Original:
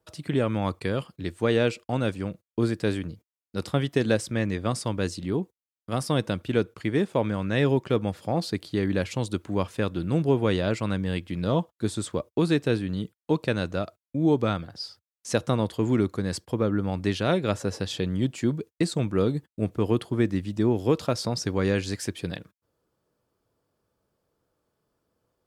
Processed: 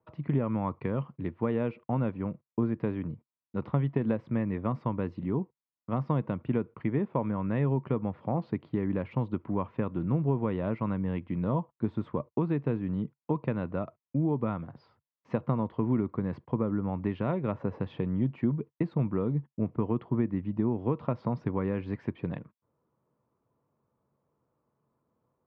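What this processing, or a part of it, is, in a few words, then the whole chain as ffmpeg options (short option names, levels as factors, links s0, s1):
bass amplifier: -af "acompressor=threshold=0.0631:ratio=4,highpass=64,equalizer=f=140:t=q:w=4:g=8,equalizer=f=230:t=q:w=4:g=6,equalizer=f=1000:t=q:w=4:g=8,equalizer=f=1600:t=q:w=4:g=-7,lowpass=f=2100:w=0.5412,lowpass=f=2100:w=1.3066,volume=0.708"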